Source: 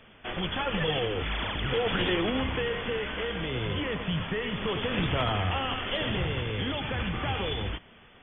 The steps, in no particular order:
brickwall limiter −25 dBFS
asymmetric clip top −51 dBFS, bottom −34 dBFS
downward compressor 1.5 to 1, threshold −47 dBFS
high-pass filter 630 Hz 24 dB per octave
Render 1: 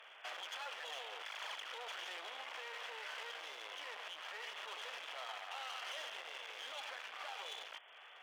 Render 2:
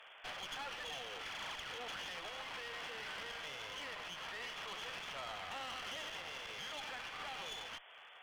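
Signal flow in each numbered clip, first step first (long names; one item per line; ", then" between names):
brickwall limiter, then downward compressor, then asymmetric clip, then high-pass filter
brickwall limiter, then high-pass filter, then downward compressor, then asymmetric clip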